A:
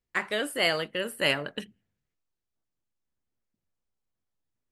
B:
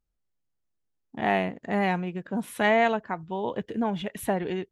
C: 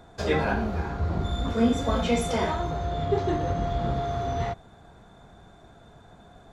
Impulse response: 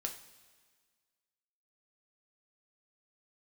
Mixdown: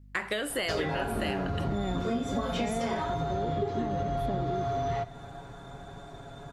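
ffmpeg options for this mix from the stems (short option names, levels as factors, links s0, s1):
-filter_complex "[0:a]alimiter=limit=0.106:level=0:latency=1:release=92,volume=1.19,asplit=2[s0][s1];[s1]volume=0.562[s2];[1:a]equalizer=f=310:t=o:w=1.2:g=10,aeval=exprs='val(0)+0.00251*(sin(2*PI*50*n/s)+sin(2*PI*2*50*n/s)/2+sin(2*PI*3*50*n/s)/3+sin(2*PI*4*50*n/s)/4+sin(2*PI*5*50*n/s)/5)':c=same,tiltshelf=f=630:g=6,volume=0.596[s3];[2:a]aecho=1:1:7.2:0.69,adelay=500,volume=1.26,asplit=2[s4][s5];[s5]volume=0.473[s6];[3:a]atrim=start_sample=2205[s7];[s2][s6]amix=inputs=2:normalize=0[s8];[s8][s7]afir=irnorm=-1:irlink=0[s9];[s0][s3][s4][s9]amix=inputs=4:normalize=0,acompressor=threshold=0.0447:ratio=10"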